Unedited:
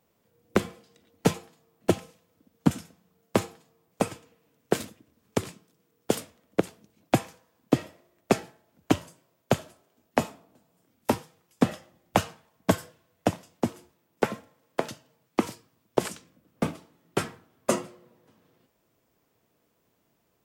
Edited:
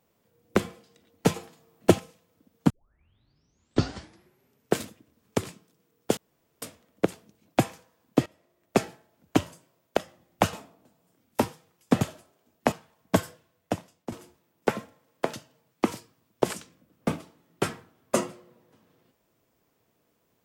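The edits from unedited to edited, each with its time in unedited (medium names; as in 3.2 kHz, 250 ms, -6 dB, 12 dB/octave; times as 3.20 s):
1.36–1.99 s: gain +4.5 dB
2.70 s: tape start 2.05 s
6.17 s: insert room tone 0.45 s
7.81–8.34 s: fade in linear, from -20 dB
9.52–10.23 s: swap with 11.71–12.27 s
12.77–13.67 s: fade out, to -10.5 dB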